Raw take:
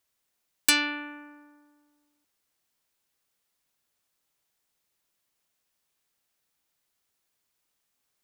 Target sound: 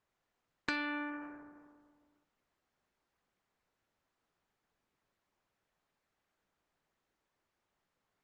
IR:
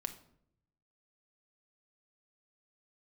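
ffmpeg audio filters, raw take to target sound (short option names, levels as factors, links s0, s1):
-filter_complex "[0:a]lowpass=1700,lowshelf=f=74:g=4,acompressor=threshold=0.0178:ratio=12,asplit=2[s0][s1];[1:a]atrim=start_sample=2205[s2];[s1][s2]afir=irnorm=-1:irlink=0,volume=0.376[s3];[s0][s3]amix=inputs=2:normalize=0,volume=1.12" -ar 48000 -c:a libopus -b:a 12k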